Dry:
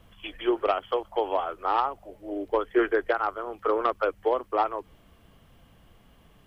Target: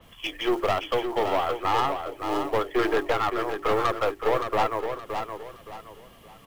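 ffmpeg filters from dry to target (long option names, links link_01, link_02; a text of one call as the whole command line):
ffmpeg -i in.wav -filter_complex "[0:a]highshelf=frequency=2500:gain=5,acrossover=split=120[link_01][link_02];[link_02]acontrast=61[link_03];[link_01][link_03]amix=inputs=2:normalize=0,bandreject=frequency=50:width_type=h:width=6,bandreject=frequency=100:width_type=h:width=6,bandreject=frequency=150:width_type=h:width=6,bandreject=frequency=200:width_type=h:width=6,bandreject=frequency=250:width_type=h:width=6,bandreject=frequency=300:width_type=h:width=6,bandreject=frequency=350:width_type=h:width=6,bandreject=frequency=400:width_type=h:width=6,acrusher=bits=5:mode=log:mix=0:aa=0.000001,aeval=exprs='(tanh(8.91*val(0)+0.4)-tanh(0.4))/8.91':channel_layout=same,bandreject=frequency=1500:width=12,asplit=2[link_04][link_05];[link_05]aecho=0:1:569|1138|1707|2276:0.447|0.138|0.0429|0.0133[link_06];[link_04][link_06]amix=inputs=2:normalize=0,adynamicequalizer=threshold=0.00631:dfrequency=4500:dqfactor=0.7:tfrequency=4500:tqfactor=0.7:attack=5:release=100:ratio=0.375:range=2:mode=cutabove:tftype=highshelf" out.wav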